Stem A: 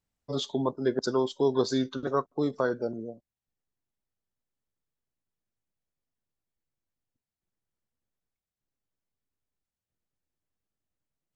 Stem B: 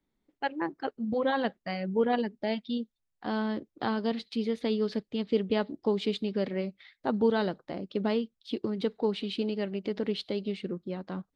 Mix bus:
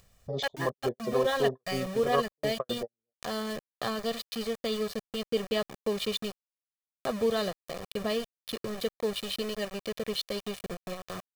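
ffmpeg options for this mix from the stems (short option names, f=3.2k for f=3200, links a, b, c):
-filter_complex "[0:a]afwtdn=0.0178,volume=-2.5dB[a];[1:a]aemphasis=mode=production:type=75fm,bandreject=f=5k:w=17,aeval=exprs='val(0)*gte(abs(val(0)),0.02)':c=same,volume=-2dB,asplit=3[b][c][d];[b]atrim=end=6.32,asetpts=PTS-STARTPTS,afade=t=out:st=6.316:d=0.004:c=hsin[e];[c]atrim=start=6.32:end=6.88,asetpts=PTS-STARTPTS,volume=0[f];[d]atrim=start=6.88,asetpts=PTS-STARTPTS,afade=t=in:d=0.004:c=hsin[g];[e][f][g]concat=n=3:v=0:a=1,asplit=2[h][i];[i]apad=whole_len=500567[j];[a][j]sidechaingate=range=-57dB:threshold=-37dB:ratio=16:detection=peak[k];[k][h]amix=inputs=2:normalize=0,aecho=1:1:1.7:0.64,acompressor=mode=upward:threshold=-33dB:ratio=2.5"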